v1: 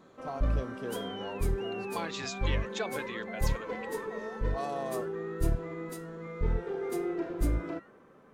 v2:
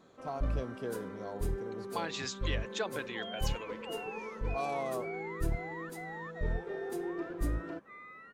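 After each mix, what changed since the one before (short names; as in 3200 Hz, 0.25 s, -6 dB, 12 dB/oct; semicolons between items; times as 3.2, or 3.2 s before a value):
first sound -4.5 dB; second sound: entry +2.25 s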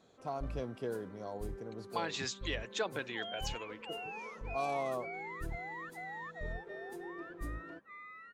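first sound -9.0 dB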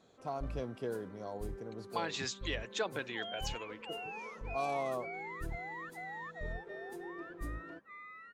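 none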